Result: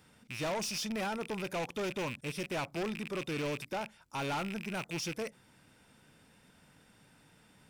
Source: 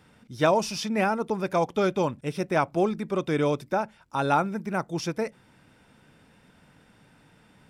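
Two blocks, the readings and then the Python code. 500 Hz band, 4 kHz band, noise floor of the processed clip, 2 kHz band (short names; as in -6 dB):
-12.0 dB, -3.0 dB, -64 dBFS, -6.5 dB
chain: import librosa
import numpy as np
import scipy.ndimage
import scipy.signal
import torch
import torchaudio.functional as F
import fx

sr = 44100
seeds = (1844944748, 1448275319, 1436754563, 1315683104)

y = fx.rattle_buzz(x, sr, strikes_db=-43.0, level_db=-23.0)
y = fx.high_shelf(y, sr, hz=4200.0, db=9.5)
y = 10.0 ** (-25.5 / 20.0) * np.tanh(y / 10.0 ** (-25.5 / 20.0))
y = F.gain(torch.from_numpy(y), -6.0).numpy()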